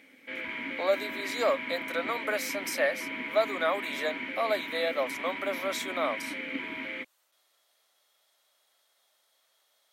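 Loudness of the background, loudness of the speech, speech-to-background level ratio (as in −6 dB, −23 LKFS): −35.0 LKFS, −31.5 LKFS, 3.5 dB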